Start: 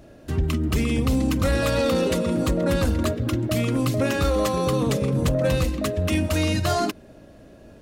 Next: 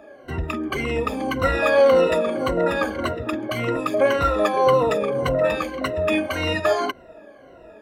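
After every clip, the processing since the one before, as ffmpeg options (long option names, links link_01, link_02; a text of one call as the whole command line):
ffmpeg -i in.wav -filter_complex "[0:a]afftfilt=real='re*pow(10,19/40*sin(2*PI*(2*log(max(b,1)*sr/1024/100)/log(2)-(-1.8)*(pts-256)/sr)))':imag='im*pow(10,19/40*sin(2*PI*(2*log(max(b,1)*sr/1024/100)/log(2)-(-1.8)*(pts-256)/sr)))':win_size=1024:overlap=0.75,acrossover=split=390 2600:gain=0.141 1 0.141[link_01][link_02][link_03];[link_01][link_02][link_03]amix=inputs=3:normalize=0,volume=4dB" out.wav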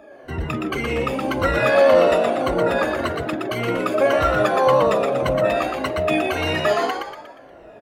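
ffmpeg -i in.wav -filter_complex "[0:a]asplit=6[link_01][link_02][link_03][link_04][link_05][link_06];[link_02]adelay=119,afreqshift=66,volume=-4.5dB[link_07];[link_03]adelay=238,afreqshift=132,volume=-11.6dB[link_08];[link_04]adelay=357,afreqshift=198,volume=-18.8dB[link_09];[link_05]adelay=476,afreqshift=264,volume=-25.9dB[link_10];[link_06]adelay=595,afreqshift=330,volume=-33dB[link_11];[link_01][link_07][link_08][link_09][link_10][link_11]amix=inputs=6:normalize=0" out.wav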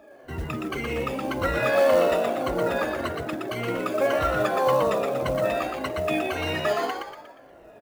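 ffmpeg -i in.wav -af "acrusher=bits=6:mode=log:mix=0:aa=0.000001,volume=-5.5dB" out.wav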